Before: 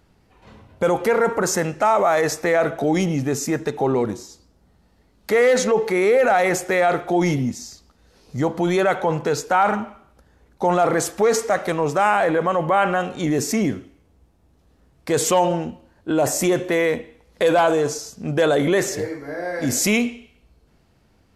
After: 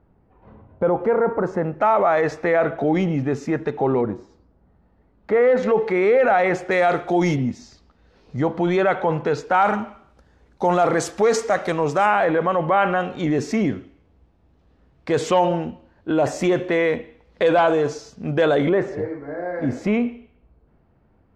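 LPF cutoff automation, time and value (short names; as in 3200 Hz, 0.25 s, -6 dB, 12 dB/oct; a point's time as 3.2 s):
1100 Hz
from 1.81 s 2500 Hz
from 4.01 s 1500 Hz
from 5.63 s 2800 Hz
from 6.71 s 6100 Hz
from 7.36 s 3200 Hz
from 9.54 s 6400 Hz
from 12.06 s 3600 Hz
from 18.69 s 1400 Hz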